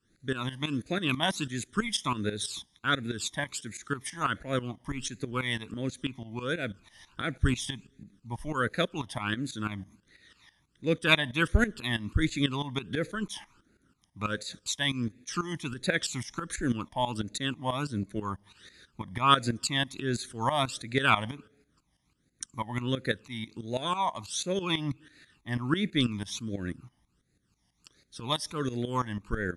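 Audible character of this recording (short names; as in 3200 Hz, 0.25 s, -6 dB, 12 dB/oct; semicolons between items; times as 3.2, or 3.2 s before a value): phasing stages 12, 1.4 Hz, lowest notch 430–1000 Hz; tremolo saw up 6.1 Hz, depth 80%; AAC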